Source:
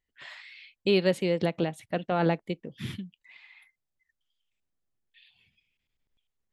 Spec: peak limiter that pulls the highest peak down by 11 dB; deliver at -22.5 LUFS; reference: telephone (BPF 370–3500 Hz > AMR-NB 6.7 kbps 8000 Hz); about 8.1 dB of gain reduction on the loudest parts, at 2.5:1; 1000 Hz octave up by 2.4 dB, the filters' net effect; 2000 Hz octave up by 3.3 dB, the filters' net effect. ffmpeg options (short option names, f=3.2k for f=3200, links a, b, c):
-af "equalizer=f=1k:t=o:g=3,equalizer=f=2k:t=o:g=4,acompressor=threshold=-30dB:ratio=2.5,alimiter=level_in=2.5dB:limit=-24dB:level=0:latency=1,volume=-2.5dB,highpass=370,lowpass=3.5k,volume=21.5dB" -ar 8000 -c:a libopencore_amrnb -b:a 6700